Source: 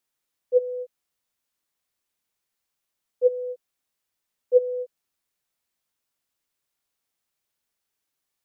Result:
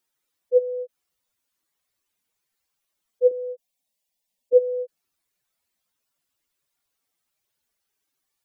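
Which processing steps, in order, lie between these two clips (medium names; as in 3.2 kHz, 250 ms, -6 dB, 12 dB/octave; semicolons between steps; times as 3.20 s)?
spectral contrast enhancement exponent 2.1; 3.31–4.53 s: static phaser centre 360 Hz, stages 6; trim +2.5 dB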